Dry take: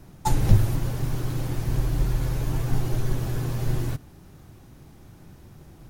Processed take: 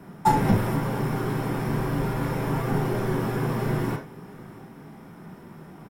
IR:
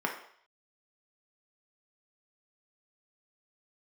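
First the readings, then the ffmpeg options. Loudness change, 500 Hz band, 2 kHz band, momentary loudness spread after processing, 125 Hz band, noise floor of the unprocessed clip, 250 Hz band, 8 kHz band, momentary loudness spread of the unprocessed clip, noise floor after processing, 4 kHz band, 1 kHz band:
+1.0 dB, +8.0 dB, +7.5 dB, 22 LU, −2.5 dB, −49 dBFS, +6.0 dB, −4.0 dB, 8 LU, −46 dBFS, −0.5 dB, +9.0 dB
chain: -filter_complex "[0:a]asoftclip=type=tanh:threshold=-8.5dB,aecho=1:1:684:0.0794[link_01];[1:a]atrim=start_sample=2205,afade=type=out:start_time=0.15:duration=0.01,atrim=end_sample=7056[link_02];[link_01][link_02]afir=irnorm=-1:irlink=0"

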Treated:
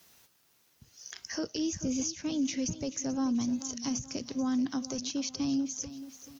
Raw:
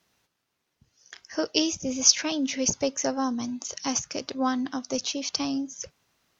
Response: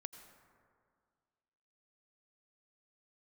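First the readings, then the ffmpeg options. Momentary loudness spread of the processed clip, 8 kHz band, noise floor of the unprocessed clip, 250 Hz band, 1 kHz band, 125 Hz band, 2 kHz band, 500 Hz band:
8 LU, can't be measured, −79 dBFS, −1.5 dB, −12.0 dB, +2.0 dB, −10.0 dB, −9.5 dB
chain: -filter_complex "[0:a]aemphasis=mode=production:type=50kf,acrossover=split=270[link_01][link_02];[link_02]acompressor=threshold=-41dB:ratio=5[link_03];[link_01][link_03]amix=inputs=2:normalize=0,alimiter=level_in=4.5dB:limit=-24dB:level=0:latency=1:release=46,volume=-4.5dB,asplit=2[link_04][link_05];[link_05]aecho=0:1:435|870|1305|1740:0.2|0.0858|0.0369|0.0159[link_06];[link_04][link_06]amix=inputs=2:normalize=0,volume=4.5dB"

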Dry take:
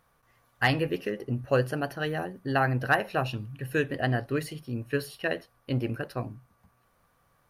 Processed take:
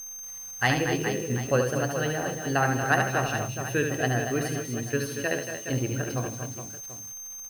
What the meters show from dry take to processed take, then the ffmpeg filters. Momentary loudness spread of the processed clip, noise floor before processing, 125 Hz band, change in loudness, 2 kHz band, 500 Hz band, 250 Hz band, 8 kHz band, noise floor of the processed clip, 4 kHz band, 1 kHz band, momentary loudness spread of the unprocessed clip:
13 LU, −68 dBFS, +1.5 dB, +1.5 dB, +2.0 dB, +2.0 dB, +2.0 dB, +20.0 dB, −40 dBFS, +2.5 dB, +2.5 dB, 10 LU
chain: -af "aecho=1:1:73|156|233|258|418|737:0.531|0.158|0.376|0.224|0.355|0.168,aeval=exprs='val(0)+0.0112*sin(2*PI*6300*n/s)':channel_layout=same,acrusher=bits=8:dc=4:mix=0:aa=0.000001"

